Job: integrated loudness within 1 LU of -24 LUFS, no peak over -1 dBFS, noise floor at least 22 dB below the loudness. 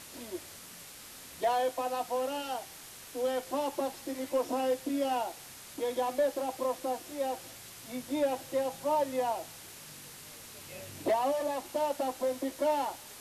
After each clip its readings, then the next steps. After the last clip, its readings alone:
clipped samples 0.3%; clipping level -22.0 dBFS; noise floor -49 dBFS; noise floor target -55 dBFS; loudness -33.0 LUFS; peak level -22.0 dBFS; loudness target -24.0 LUFS
-> clip repair -22 dBFS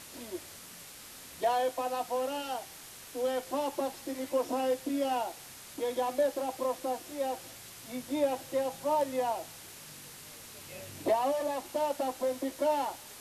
clipped samples 0.0%; noise floor -49 dBFS; noise floor target -55 dBFS
-> noise print and reduce 6 dB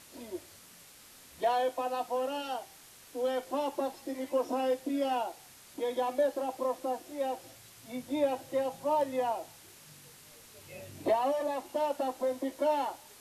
noise floor -55 dBFS; loudness -33.0 LUFS; peak level -17.0 dBFS; loudness target -24.0 LUFS
-> trim +9 dB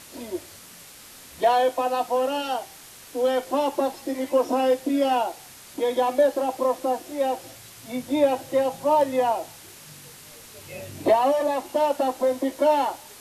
loudness -24.0 LUFS; peak level -8.0 dBFS; noise floor -46 dBFS

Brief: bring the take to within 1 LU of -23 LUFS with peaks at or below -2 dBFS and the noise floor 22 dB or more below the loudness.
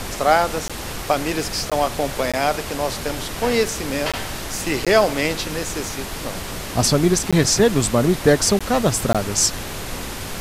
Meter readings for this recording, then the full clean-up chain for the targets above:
dropouts 8; longest dropout 16 ms; noise floor -30 dBFS; noise floor target -43 dBFS; loudness -20.5 LUFS; peak level -2.0 dBFS; loudness target -23.0 LUFS
-> interpolate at 0.68/1.70/2.32/4.12/4.85/7.31/8.59/9.13 s, 16 ms; noise print and reduce 13 dB; trim -2.5 dB

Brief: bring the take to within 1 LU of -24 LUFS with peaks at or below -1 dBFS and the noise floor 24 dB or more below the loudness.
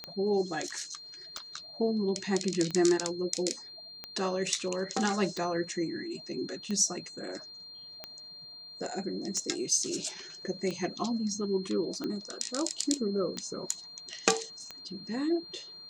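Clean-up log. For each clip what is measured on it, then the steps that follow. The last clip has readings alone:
clicks found 12; steady tone 4.2 kHz; tone level -45 dBFS; loudness -32.0 LUFS; peak level -4.0 dBFS; loudness target -24.0 LUFS
-> de-click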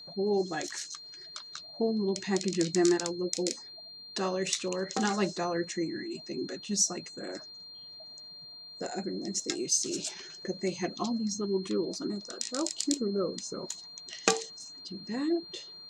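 clicks found 0; steady tone 4.2 kHz; tone level -45 dBFS
-> band-stop 4.2 kHz, Q 30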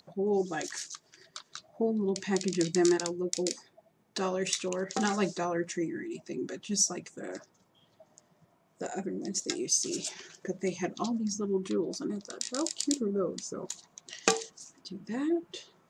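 steady tone not found; loudness -32.0 LUFS; peak level -5.0 dBFS; loudness target -24.0 LUFS
-> trim +8 dB; peak limiter -1 dBFS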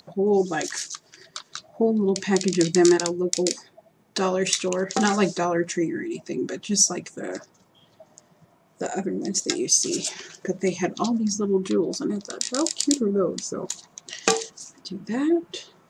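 loudness -24.0 LUFS; peak level -1.0 dBFS; noise floor -61 dBFS

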